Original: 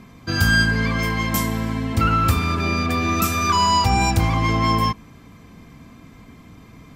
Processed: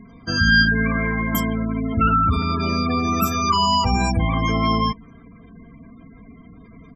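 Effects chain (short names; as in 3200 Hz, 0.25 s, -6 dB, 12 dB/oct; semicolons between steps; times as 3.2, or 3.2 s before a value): comb 4.4 ms, depth 39%; spectral gate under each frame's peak -20 dB strong; 0.69–1.35 steep low-pass 2400 Hz 72 dB/oct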